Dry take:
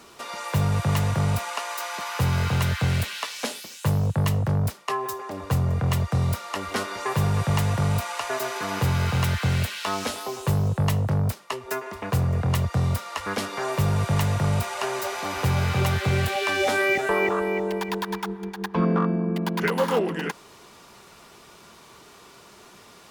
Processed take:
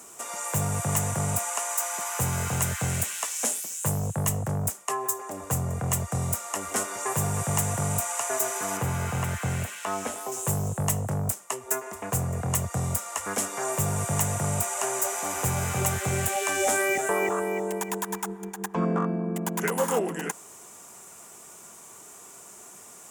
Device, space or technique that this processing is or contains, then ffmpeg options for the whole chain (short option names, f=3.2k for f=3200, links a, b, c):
budget condenser microphone: -filter_complex "[0:a]equalizer=f=720:t=o:w=0.31:g=4.5,asettb=1/sr,asplit=3[a][b][c];[a]atrim=end=8.774[d];[b]atrim=start=8.77:end=10.32,asetpts=PTS-STARTPTS,afade=t=in:d=0.004:c=qsin,afade=t=out:st=1.546:d=0.004:c=qsin,acrossover=split=3200[e][f];[f]acompressor=threshold=-44dB:ratio=4:attack=1:release=60[g];[e][g]amix=inputs=2:normalize=0[h];[c]atrim=start=10.316[i];[d][h]acrossfade=d=0.004:c1=hsin:c2=qsin[j];[j][i]acrossfade=d=0.004:c1=qsin:c2=hsin,highpass=f=120:p=1,highshelf=f=5.7k:t=q:w=3:g=10,volume=-3dB"